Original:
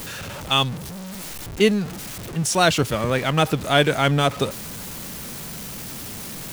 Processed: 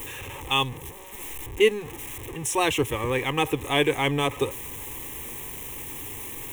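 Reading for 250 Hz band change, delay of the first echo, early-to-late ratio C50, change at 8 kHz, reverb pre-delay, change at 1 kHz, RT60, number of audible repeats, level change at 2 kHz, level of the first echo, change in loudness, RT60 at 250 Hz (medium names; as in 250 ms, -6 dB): -6.5 dB, no echo, no reverb, -4.5 dB, no reverb, -4.5 dB, no reverb, no echo, -3.0 dB, no echo, -4.5 dB, no reverb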